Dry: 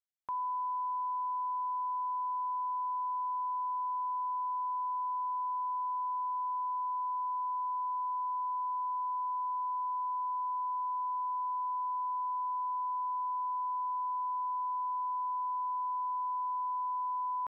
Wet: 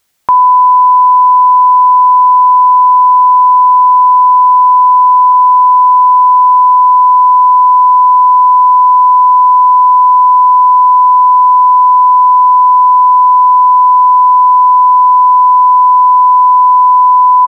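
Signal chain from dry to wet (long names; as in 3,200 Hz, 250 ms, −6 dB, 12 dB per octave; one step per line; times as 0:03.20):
0:05.32–0:06.77: dynamic equaliser 1,000 Hz, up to −4 dB, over −45 dBFS
ambience of single reflections 14 ms −15 dB, 47 ms −13.5 dB
boost into a limiter +34.5 dB
level −1 dB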